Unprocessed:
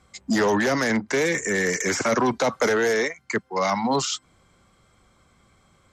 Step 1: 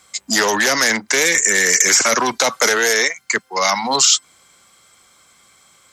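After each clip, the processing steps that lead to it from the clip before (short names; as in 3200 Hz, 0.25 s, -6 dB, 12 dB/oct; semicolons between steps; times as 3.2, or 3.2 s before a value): tilt +4 dB/oct; gain +5.5 dB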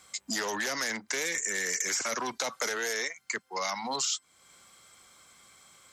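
compressor 2:1, threshold -33 dBFS, peak gain reduction 13 dB; gain -5 dB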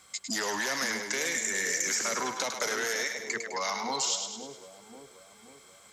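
split-band echo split 640 Hz, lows 0.53 s, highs 0.103 s, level -6 dB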